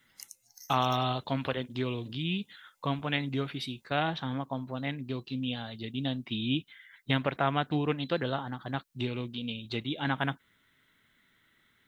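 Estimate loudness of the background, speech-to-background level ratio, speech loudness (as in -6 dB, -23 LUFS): -50.5 LUFS, 18.0 dB, -32.5 LUFS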